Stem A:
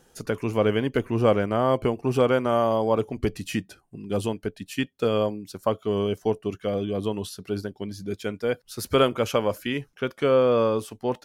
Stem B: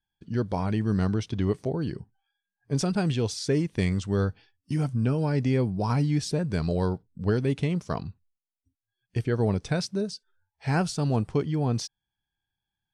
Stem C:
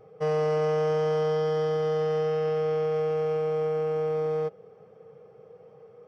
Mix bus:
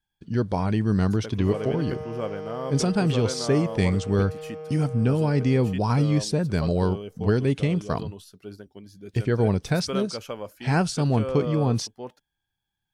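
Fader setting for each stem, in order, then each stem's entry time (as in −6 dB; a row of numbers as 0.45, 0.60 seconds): −11.0, +3.0, −10.5 decibels; 0.95, 0.00, 1.25 seconds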